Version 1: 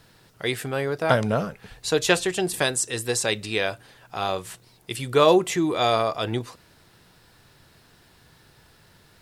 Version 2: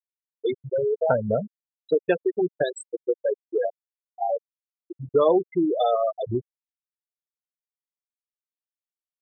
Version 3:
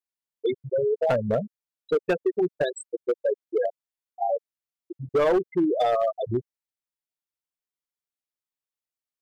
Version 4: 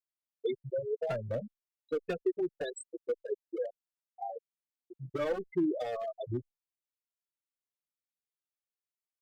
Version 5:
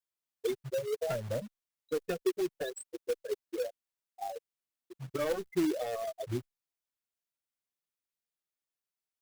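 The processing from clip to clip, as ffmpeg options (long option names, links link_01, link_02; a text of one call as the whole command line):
ffmpeg -i in.wav -af "afftfilt=real='re*gte(hypot(re,im),0.282)':imag='im*gte(hypot(re,im),0.282)':win_size=1024:overlap=0.75,equalizer=frequency=500:width_type=o:width=2:gain=8.5,acompressor=threshold=-23dB:ratio=2" out.wav
ffmpeg -i in.wav -af "asoftclip=type=hard:threshold=-17dB" out.wav
ffmpeg -i in.wav -filter_complex "[0:a]acrossover=split=540|1200[link_01][link_02][link_03];[link_01]crystalizer=i=9.5:c=0[link_04];[link_02]acompressor=threshold=-38dB:ratio=6[link_05];[link_04][link_05][link_03]amix=inputs=3:normalize=0,asplit=2[link_06][link_07];[link_07]adelay=2.5,afreqshift=-1.8[link_08];[link_06][link_08]amix=inputs=2:normalize=1,volume=-5.5dB" out.wav
ffmpeg -i in.wav -af "acrusher=bits=3:mode=log:mix=0:aa=0.000001" out.wav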